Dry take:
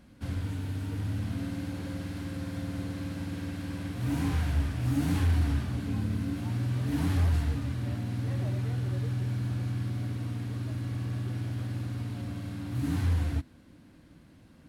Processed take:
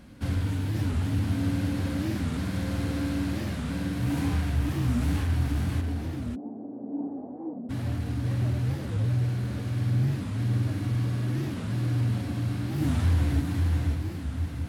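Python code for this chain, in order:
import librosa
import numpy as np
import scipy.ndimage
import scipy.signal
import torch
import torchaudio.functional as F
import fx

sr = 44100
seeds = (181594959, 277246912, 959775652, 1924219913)

p1 = fx.echo_diffused(x, sr, ms=717, feedback_pct=51, wet_db=-9.0)
p2 = np.clip(p1, -10.0 ** (-30.0 / 20.0), 10.0 ** (-30.0 / 20.0))
p3 = p1 + F.gain(torch.from_numpy(p2), -10.0).numpy()
p4 = fx.rider(p3, sr, range_db=5, speed_s=2.0)
p5 = fx.cheby1_bandpass(p4, sr, low_hz=240.0, high_hz=760.0, order=3, at=(5.8, 7.69), fade=0.02)
p6 = p5 + fx.echo_single(p5, sr, ms=544, db=-4.5, dry=0)
y = fx.record_warp(p6, sr, rpm=45.0, depth_cents=250.0)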